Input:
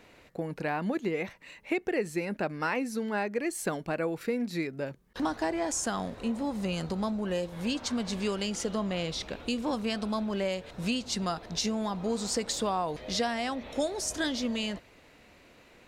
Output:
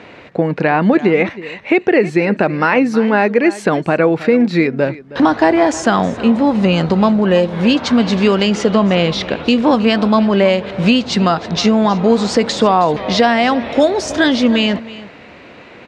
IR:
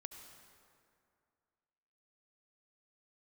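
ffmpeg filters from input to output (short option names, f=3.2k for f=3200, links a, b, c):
-af "highpass=100,lowpass=3.3k,aecho=1:1:317:0.133,alimiter=level_in=20dB:limit=-1dB:release=50:level=0:latency=1,volume=-1dB"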